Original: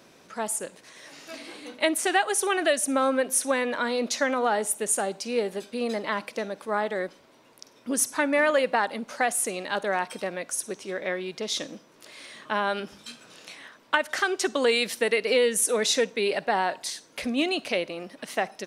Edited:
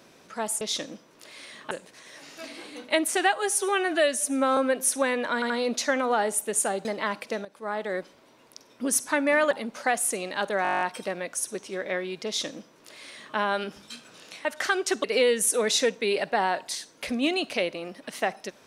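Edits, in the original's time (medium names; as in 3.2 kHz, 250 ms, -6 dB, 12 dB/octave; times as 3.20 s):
2.24–3.06 s: stretch 1.5×
3.83 s: stutter 0.08 s, 3 plays
5.18–5.91 s: delete
6.51–7.05 s: fade in, from -14.5 dB
8.57–8.85 s: delete
9.97 s: stutter 0.02 s, 10 plays
11.42–12.52 s: copy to 0.61 s
13.61–13.98 s: delete
14.57–15.19 s: delete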